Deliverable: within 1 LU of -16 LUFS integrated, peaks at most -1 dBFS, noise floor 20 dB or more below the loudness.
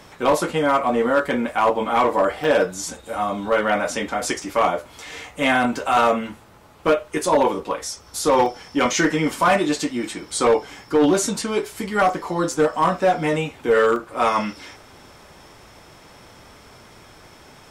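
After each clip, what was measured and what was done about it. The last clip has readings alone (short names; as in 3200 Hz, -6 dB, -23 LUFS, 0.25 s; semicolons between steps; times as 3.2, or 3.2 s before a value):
clipped 0.7%; flat tops at -10.5 dBFS; dropouts 7; longest dropout 1.7 ms; loudness -21.0 LUFS; peak -10.5 dBFS; loudness target -16.0 LUFS
-> clip repair -10.5 dBFS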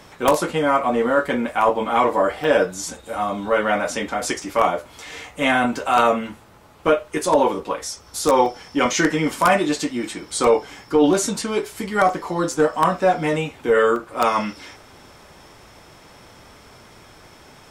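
clipped 0.0%; dropouts 7; longest dropout 1.7 ms
-> interpolate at 1.52/2.44/3.48/6.27/8.46/12.09/13.96, 1.7 ms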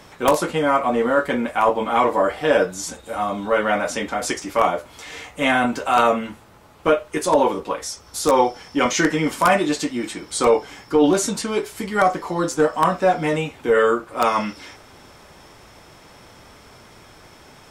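dropouts 0; loudness -20.5 LUFS; peak -1.5 dBFS; loudness target -16.0 LUFS
-> gain +4.5 dB; limiter -1 dBFS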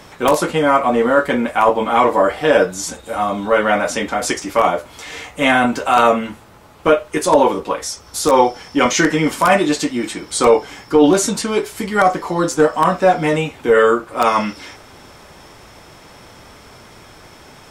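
loudness -16.0 LUFS; peak -1.0 dBFS; noise floor -43 dBFS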